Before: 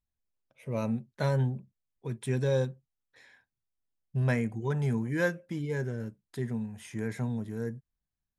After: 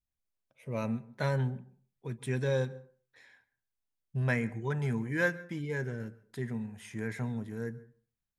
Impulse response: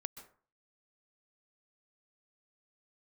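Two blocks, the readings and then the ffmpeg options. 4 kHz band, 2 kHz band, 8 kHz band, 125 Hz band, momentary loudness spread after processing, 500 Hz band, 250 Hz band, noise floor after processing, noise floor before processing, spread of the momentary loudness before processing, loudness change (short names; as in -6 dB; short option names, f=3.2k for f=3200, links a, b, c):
-1.0 dB, +2.5 dB, -2.5 dB, -3.0 dB, 12 LU, -2.5 dB, -3.0 dB, under -85 dBFS, under -85 dBFS, 11 LU, -2.0 dB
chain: -filter_complex "[0:a]adynamicequalizer=threshold=0.00282:dfrequency=1900:dqfactor=0.99:tfrequency=1900:tqfactor=0.99:attack=5:release=100:ratio=0.375:range=3:mode=boostabove:tftype=bell,asplit=2[a][b];[1:a]atrim=start_sample=2205[c];[b][c]afir=irnorm=-1:irlink=0,volume=-4.5dB[d];[a][d]amix=inputs=2:normalize=0,volume=-6dB"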